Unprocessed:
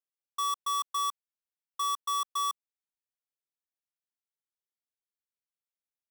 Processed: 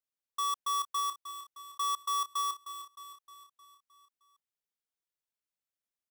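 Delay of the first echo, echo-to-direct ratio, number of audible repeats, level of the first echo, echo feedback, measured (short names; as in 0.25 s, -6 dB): 0.309 s, -9.5 dB, 5, -11.0 dB, 54%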